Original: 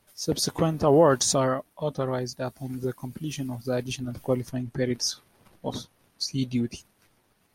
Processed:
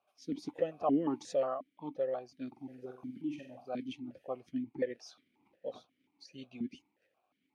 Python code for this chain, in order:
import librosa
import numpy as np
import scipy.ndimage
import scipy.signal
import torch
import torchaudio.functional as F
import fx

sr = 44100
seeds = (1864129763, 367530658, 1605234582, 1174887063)

y = fx.room_flutter(x, sr, wall_m=8.1, rt60_s=0.42, at=(2.47, 3.68))
y = fx.vowel_held(y, sr, hz=5.6)